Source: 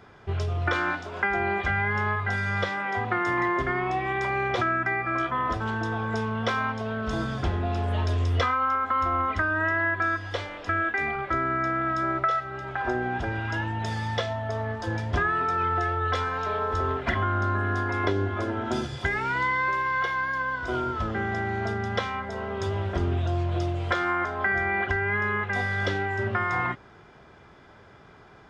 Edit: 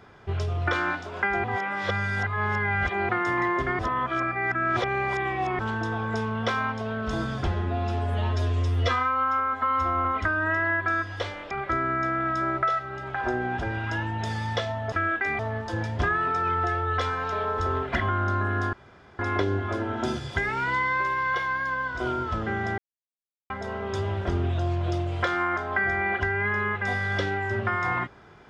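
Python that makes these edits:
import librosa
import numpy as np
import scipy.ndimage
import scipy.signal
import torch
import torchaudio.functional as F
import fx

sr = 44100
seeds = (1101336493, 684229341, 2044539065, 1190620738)

y = fx.edit(x, sr, fx.reverse_span(start_s=1.44, length_s=1.65),
    fx.reverse_span(start_s=3.79, length_s=1.8),
    fx.stretch_span(start_s=7.47, length_s=1.72, factor=1.5),
    fx.move(start_s=10.65, length_s=0.47, to_s=14.53),
    fx.insert_room_tone(at_s=17.87, length_s=0.46),
    fx.silence(start_s=21.46, length_s=0.72), tone=tone)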